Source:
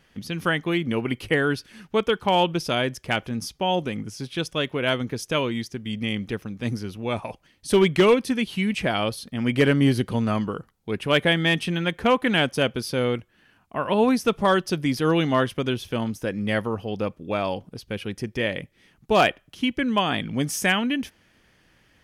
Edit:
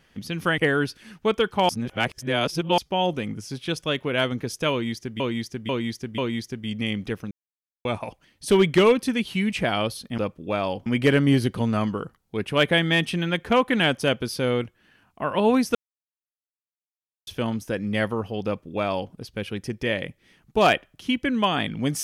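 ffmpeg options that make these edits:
-filter_complex "[0:a]asplit=13[s0][s1][s2][s3][s4][s5][s6][s7][s8][s9][s10][s11][s12];[s0]atrim=end=0.582[s13];[s1]atrim=start=1.268:end=2.382[s14];[s2]atrim=start=2.378:end=3.472,asetpts=PTS-STARTPTS,areverse[s15];[s3]atrim=start=3.468:end=5.892[s16];[s4]atrim=start=5.398:end=5.892[s17];[s5]atrim=start=5.398:end=5.892[s18];[s6]atrim=start=5.398:end=6.53,asetpts=PTS-STARTPTS,afade=t=out:st=1.128:d=0.004:c=hsin[s19];[s7]atrim=start=6.53:end=7.07,asetpts=PTS-STARTPTS,volume=0[s20];[s8]atrim=start=7.07:end=9.402,asetpts=PTS-STARTPTS,afade=t=in:d=0.004:c=hsin[s21];[s9]atrim=start=16.988:end=17.672[s22];[s10]atrim=start=9.398:end=14.29,asetpts=PTS-STARTPTS,afade=t=out:st=4.888:d=0.004:c=hsin[s23];[s11]atrim=start=14.29:end=15.81,asetpts=PTS-STARTPTS,volume=0[s24];[s12]atrim=start=15.81,asetpts=PTS-STARTPTS,afade=t=in:d=0.004:c=hsin[s25];[s13][s14]acrossfade=d=0.004:c1=hsin:c2=hsin[s26];[s26][s15]acrossfade=d=0.004:c1=hsin:c2=hsin[s27];[s27][s16]acrossfade=d=0.004:c1=hsin:c2=hsin[s28];[s28][s17]acrossfade=d=0.004:c1=hsin:c2=hsin[s29];[s29][s18]acrossfade=d=0.004:c1=hsin:c2=hsin[s30];[s19][s20][s21]concat=n=3:v=0:a=1[s31];[s30][s31]acrossfade=d=0.004:c1=hsin:c2=hsin[s32];[s32][s22]acrossfade=d=0.004:c1=hsin:c2=hsin[s33];[s23][s24][s25]concat=n=3:v=0:a=1[s34];[s33][s34]acrossfade=d=0.004:c1=hsin:c2=hsin"

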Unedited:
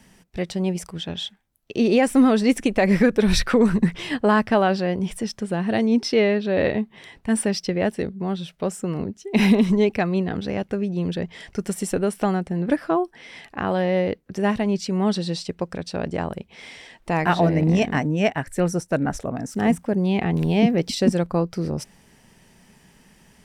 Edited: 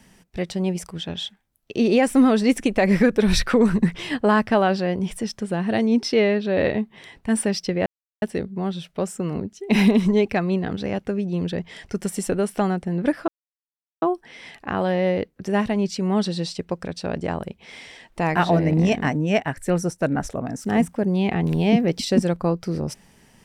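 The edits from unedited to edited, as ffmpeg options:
-filter_complex "[0:a]asplit=3[s0][s1][s2];[s0]atrim=end=7.86,asetpts=PTS-STARTPTS,afade=t=out:st=7.856:d=0.004:c=hsin,apad=pad_dur=0.36[s3];[s1]atrim=start=7.86:end=12.92,asetpts=PTS-STARTPTS,afade=t=in:d=0.004:c=hsin,afade=t=out:st=5.056:d=0.004:c=hsin,apad=pad_dur=0.74[s4];[s2]atrim=start=12.92,asetpts=PTS-STARTPTS,afade=t=in:d=0.004:c=hsin[s5];[s3][s4][s5]concat=n=3:v=0:a=1"

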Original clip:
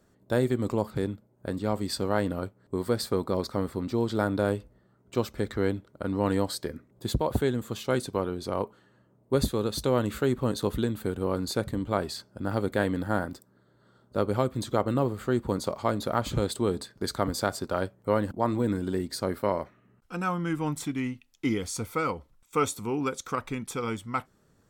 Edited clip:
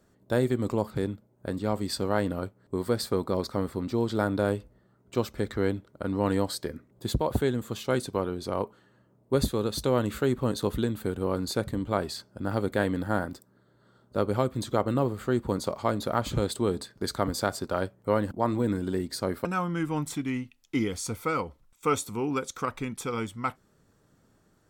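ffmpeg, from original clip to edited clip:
-filter_complex "[0:a]asplit=2[s0][s1];[s0]atrim=end=19.452[s2];[s1]atrim=start=20.148[s3];[s2][s3]acrossfade=d=0.004:c1=hsin:c2=hsin"

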